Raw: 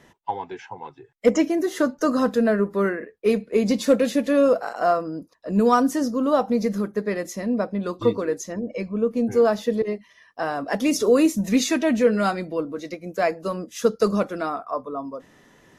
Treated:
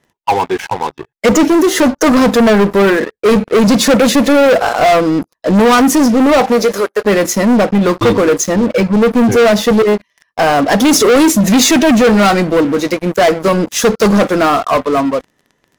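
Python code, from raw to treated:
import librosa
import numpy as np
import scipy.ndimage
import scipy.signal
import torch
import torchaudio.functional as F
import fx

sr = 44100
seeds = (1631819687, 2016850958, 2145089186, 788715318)

y = fx.highpass(x, sr, hz=fx.line((6.32, 200.0), (7.04, 530.0)), slope=24, at=(6.32, 7.04), fade=0.02)
y = fx.leveller(y, sr, passes=5)
y = y * librosa.db_to_amplitude(1.5)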